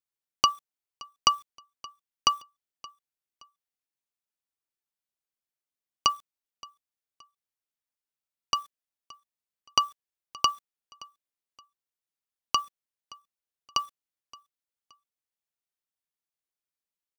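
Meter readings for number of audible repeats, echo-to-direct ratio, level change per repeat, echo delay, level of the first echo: 2, −22.0 dB, −9.5 dB, 572 ms, −22.5 dB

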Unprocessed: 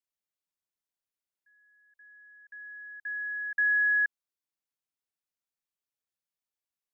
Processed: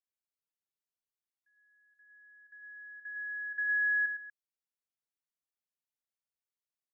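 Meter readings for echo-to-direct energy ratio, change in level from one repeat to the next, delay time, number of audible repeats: −6.0 dB, repeats not evenly spaced, 65 ms, 3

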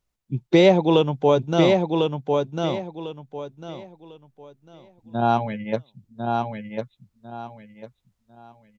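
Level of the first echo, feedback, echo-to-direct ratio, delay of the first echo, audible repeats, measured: −4.0 dB, 26%, −3.5 dB, 1,049 ms, 3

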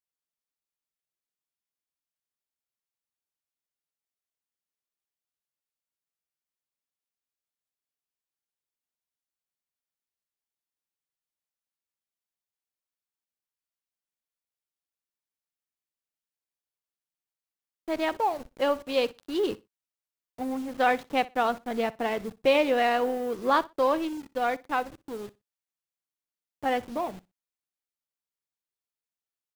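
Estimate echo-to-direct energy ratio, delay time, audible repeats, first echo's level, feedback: −20.5 dB, 61 ms, 2, −20.5 dB, 19%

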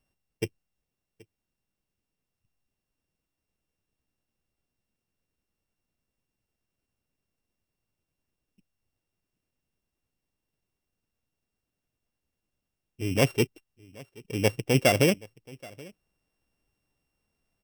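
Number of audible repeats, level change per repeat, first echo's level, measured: 1, repeats not evenly spaced, −23.5 dB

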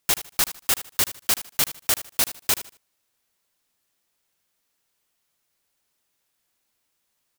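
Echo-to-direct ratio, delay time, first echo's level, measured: −13.5 dB, 77 ms, −14.0 dB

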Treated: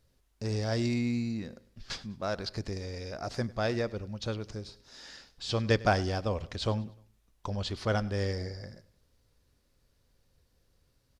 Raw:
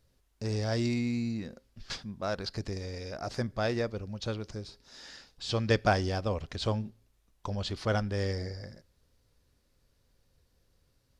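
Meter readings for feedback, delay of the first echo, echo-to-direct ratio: 41%, 100 ms, −20.0 dB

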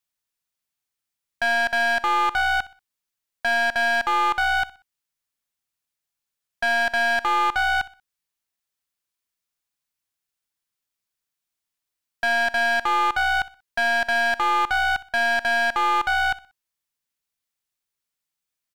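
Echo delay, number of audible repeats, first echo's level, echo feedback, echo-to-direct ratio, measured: 62 ms, 2, −18.5 dB, 33%, −18.0 dB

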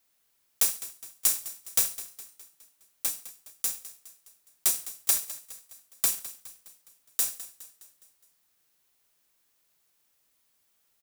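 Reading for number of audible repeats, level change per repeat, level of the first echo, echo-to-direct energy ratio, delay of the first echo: 4, −5.5 dB, −15.5 dB, −14.0 dB, 207 ms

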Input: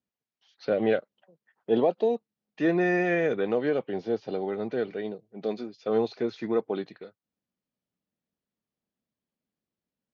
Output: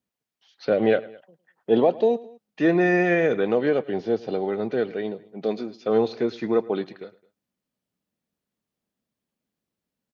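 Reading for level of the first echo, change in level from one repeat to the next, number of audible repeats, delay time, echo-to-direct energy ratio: −20.5 dB, −5.0 dB, 2, 107 ms, −19.5 dB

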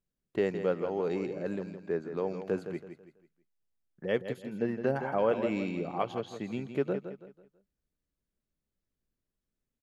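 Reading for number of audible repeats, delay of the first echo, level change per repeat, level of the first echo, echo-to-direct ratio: 3, 164 ms, −9.0 dB, −9.5 dB, −9.0 dB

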